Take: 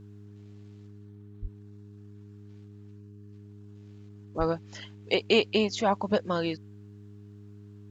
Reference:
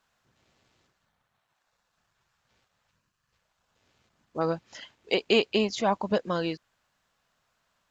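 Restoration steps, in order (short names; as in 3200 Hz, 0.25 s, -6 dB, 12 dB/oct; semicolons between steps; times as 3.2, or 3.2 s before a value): de-hum 102.6 Hz, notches 4; de-plosive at 1.41/4.38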